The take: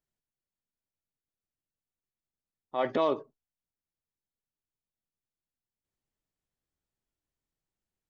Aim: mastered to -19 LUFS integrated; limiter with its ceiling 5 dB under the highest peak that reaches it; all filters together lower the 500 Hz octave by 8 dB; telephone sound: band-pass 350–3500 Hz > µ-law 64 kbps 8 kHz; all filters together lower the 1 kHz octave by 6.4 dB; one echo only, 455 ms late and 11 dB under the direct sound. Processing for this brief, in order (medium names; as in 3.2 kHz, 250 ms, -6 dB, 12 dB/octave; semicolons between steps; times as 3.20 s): peaking EQ 500 Hz -7.5 dB; peaking EQ 1 kHz -5.5 dB; peak limiter -25.5 dBFS; band-pass 350–3500 Hz; delay 455 ms -11 dB; trim +23 dB; µ-law 64 kbps 8 kHz